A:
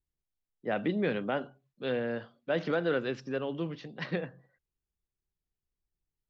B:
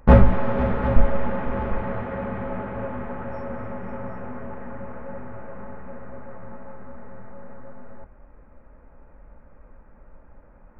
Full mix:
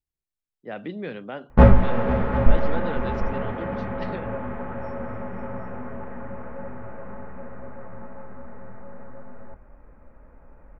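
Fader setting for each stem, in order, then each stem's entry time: -3.5, 0.0 dB; 0.00, 1.50 s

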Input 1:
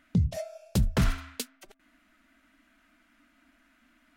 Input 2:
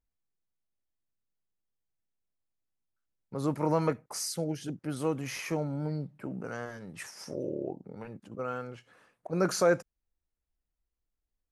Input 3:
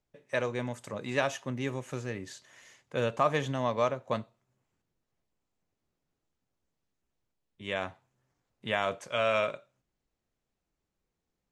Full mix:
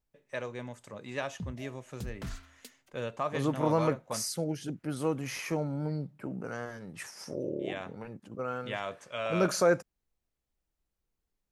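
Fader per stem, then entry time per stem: -15.5, 0.0, -6.5 dB; 1.25, 0.00, 0.00 s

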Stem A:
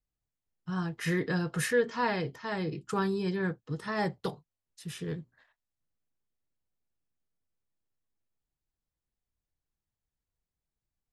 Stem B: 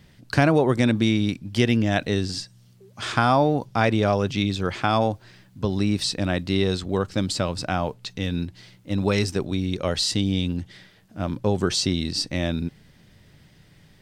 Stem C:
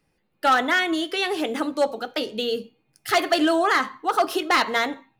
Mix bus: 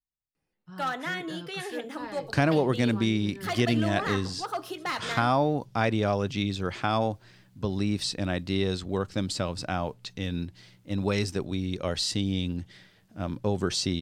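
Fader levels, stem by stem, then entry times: -11.0, -5.0, -12.0 dB; 0.00, 2.00, 0.35 s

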